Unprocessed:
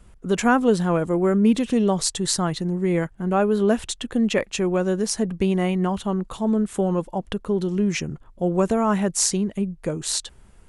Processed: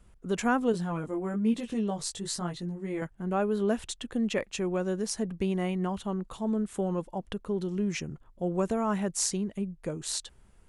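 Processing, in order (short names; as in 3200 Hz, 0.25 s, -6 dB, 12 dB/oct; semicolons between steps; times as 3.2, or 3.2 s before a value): 0.72–3.02 chorus 1.1 Hz, delay 17 ms, depth 3.5 ms; gain -8 dB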